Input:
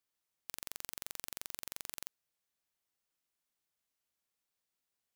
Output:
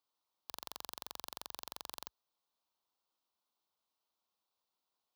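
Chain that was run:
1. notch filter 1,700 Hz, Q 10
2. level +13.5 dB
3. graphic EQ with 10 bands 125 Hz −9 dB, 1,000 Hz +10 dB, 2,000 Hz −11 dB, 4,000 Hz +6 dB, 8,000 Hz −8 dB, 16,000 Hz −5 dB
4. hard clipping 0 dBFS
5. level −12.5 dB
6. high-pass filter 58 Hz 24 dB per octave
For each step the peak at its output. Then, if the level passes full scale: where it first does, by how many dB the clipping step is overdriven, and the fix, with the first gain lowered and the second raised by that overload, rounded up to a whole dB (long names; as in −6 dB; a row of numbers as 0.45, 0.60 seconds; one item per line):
−14.0, −0.5, −5.0, −5.0, −17.5, −17.5 dBFS
no step passes full scale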